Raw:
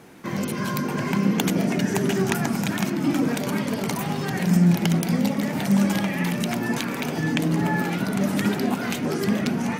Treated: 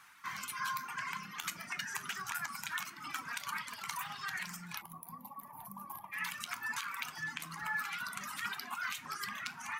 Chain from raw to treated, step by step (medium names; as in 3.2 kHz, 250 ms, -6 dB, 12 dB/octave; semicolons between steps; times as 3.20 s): reverb removal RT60 1.7 s; feedback comb 81 Hz, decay 0.24 s, harmonics all, mix 50%; peak limiter -19.5 dBFS, peak gain reduction 11 dB; peaking EQ 300 Hz -12 dB 2.3 oct; 4.81–6.13 s: time-frequency box 1.2–10 kHz -26 dB; resonant low shelf 780 Hz -13.5 dB, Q 3; 3.24–4.54 s: loudspeaker Doppler distortion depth 0.1 ms; trim -2.5 dB